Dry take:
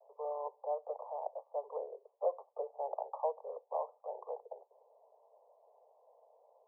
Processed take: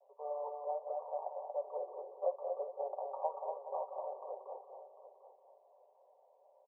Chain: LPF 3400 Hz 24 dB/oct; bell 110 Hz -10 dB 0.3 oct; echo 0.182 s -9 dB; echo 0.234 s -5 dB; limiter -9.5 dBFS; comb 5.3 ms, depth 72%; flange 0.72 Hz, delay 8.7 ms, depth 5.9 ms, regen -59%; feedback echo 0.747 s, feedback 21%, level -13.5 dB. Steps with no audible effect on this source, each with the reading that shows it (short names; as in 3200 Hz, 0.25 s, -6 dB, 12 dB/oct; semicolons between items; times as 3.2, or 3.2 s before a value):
LPF 3400 Hz: input band ends at 1200 Hz; bell 110 Hz: input band starts at 360 Hz; limiter -9.5 dBFS: input peak -21.5 dBFS